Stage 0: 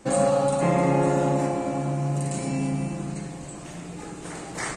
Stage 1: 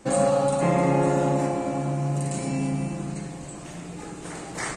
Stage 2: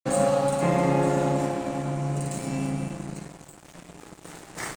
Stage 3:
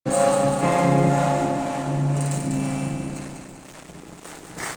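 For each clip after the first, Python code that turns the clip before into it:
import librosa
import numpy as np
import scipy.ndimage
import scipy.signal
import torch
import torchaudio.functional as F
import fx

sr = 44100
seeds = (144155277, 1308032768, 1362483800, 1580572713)

y1 = x
y2 = np.sign(y1) * np.maximum(np.abs(y1) - 10.0 ** (-37.0 / 20.0), 0.0)
y3 = fx.harmonic_tremolo(y2, sr, hz=2.0, depth_pct=70, crossover_hz=460.0)
y3 = fx.echo_feedback(y3, sr, ms=196, feedback_pct=52, wet_db=-5)
y3 = F.gain(torch.from_numpy(y3), 6.0).numpy()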